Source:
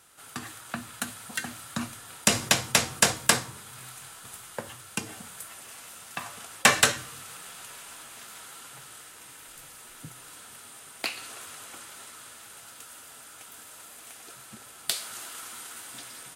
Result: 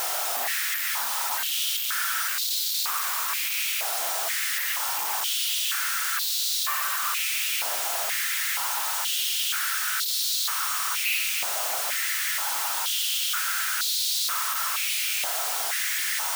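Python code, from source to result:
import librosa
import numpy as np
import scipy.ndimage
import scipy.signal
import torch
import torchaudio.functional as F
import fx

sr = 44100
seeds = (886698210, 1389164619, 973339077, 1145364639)

y = np.sign(x) * np.sqrt(np.mean(np.square(x)))
y = fx.wow_flutter(y, sr, seeds[0], rate_hz=2.1, depth_cents=22.0)
y = (np.kron(y[::3], np.eye(3)[0]) * 3)[:len(y)]
y = fx.filter_held_highpass(y, sr, hz=2.1, low_hz=690.0, high_hz=4000.0)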